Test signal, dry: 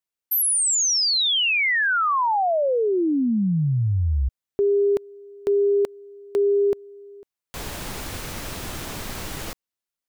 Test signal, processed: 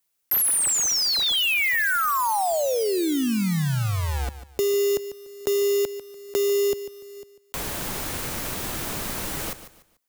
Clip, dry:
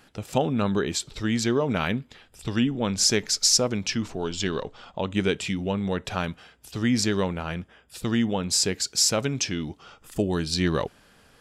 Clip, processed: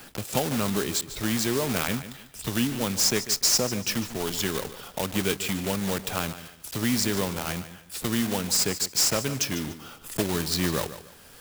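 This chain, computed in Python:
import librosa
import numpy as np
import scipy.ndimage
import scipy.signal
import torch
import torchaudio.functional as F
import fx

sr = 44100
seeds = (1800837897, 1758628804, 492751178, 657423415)

p1 = fx.block_float(x, sr, bits=3)
p2 = fx.high_shelf(p1, sr, hz=6700.0, db=8.0)
p3 = p2 + fx.echo_feedback(p2, sr, ms=146, feedback_pct=24, wet_db=-14.5, dry=0)
p4 = fx.band_squash(p3, sr, depth_pct=40)
y = p4 * librosa.db_to_amplitude(-3.0)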